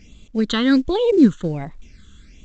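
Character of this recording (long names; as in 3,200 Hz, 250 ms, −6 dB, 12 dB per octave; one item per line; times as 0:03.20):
phaser sweep stages 8, 1.3 Hz, lowest notch 680–1,700 Hz
mu-law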